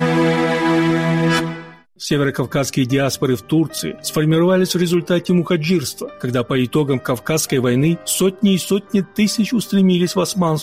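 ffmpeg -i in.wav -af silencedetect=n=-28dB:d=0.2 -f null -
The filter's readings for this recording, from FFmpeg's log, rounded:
silence_start: 1.63
silence_end: 2.01 | silence_duration: 0.38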